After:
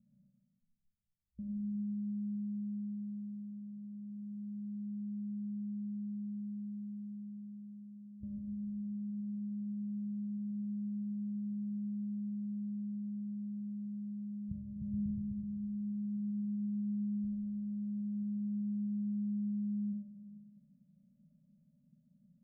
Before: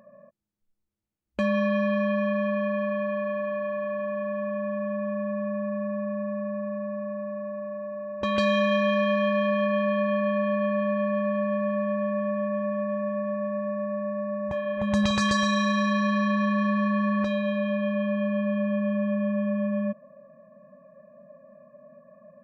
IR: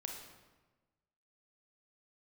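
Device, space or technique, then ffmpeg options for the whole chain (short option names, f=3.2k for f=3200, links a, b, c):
club heard from the street: -filter_complex "[0:a]alimiter=limit=-19.5dB:level=0:latency=1:release=227,lowpass=f=180:w=0.5412,lowpass=f=180:w=1.3066[a];[1:a]atrim=start_sample=2205[b];[a][b]afir=irnorm=-1:irlink=0"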